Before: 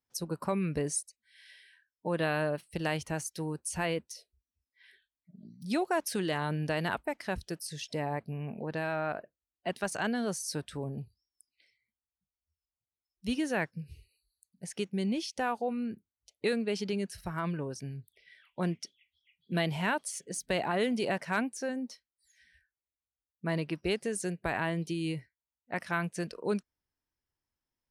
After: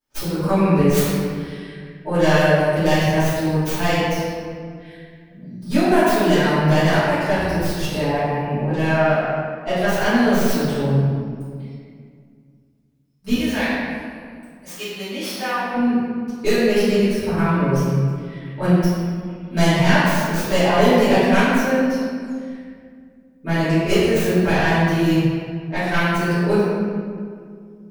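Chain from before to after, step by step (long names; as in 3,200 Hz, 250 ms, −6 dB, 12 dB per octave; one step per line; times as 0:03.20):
stylus tracing distortion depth 0.24 ms
0:13.33–0:15.74: high-pass filter 1,200 Hz 6 dB per octave
convolution reverb RT60 2.1 s, pre-delay 3 ms, DRR −17 dB
level −2.5 dB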